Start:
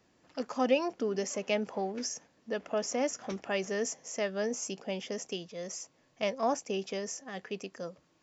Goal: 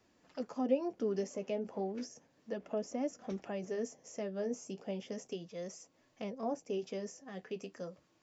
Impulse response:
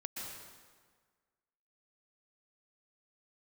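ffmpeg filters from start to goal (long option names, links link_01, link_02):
-filter_complex "[0:a]acrossover=split=640[link_01][link_02];[link_02]acompressor=threshold=-48dB:ratio=6[link_03];[link_01][link_03]amix=inputs=2:normalize=0,flanger=delay=2.8:depth=9.7:regen=-49:speed=0.33:shape=triangular,volume=1.5dB"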